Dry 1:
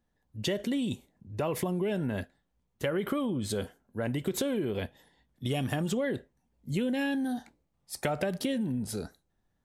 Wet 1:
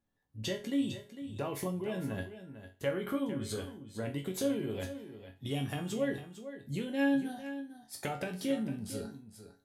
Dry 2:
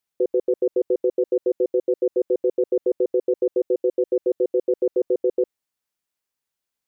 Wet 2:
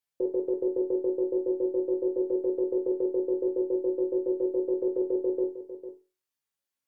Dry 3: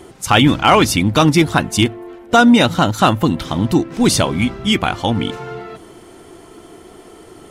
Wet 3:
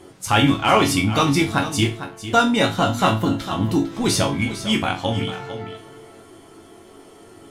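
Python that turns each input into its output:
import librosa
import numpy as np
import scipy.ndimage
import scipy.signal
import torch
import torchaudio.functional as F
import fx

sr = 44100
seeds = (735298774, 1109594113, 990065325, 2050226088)

y = fx.cheby_harmonics(x, sr, harmonics=(6,), levels_db=(-39,), full_scale_db=-1.0)
y = fx.resonator_bank(y, sr, root=42, chord='minor', decay_s=0.3)
y = y + 10.0 ** (-12.0 / 20.0) * np.pad(y, (int(452 * sr / 1000.0), 0))[:len(y)]
y = y * librosa.db_to_amplitude(7.5)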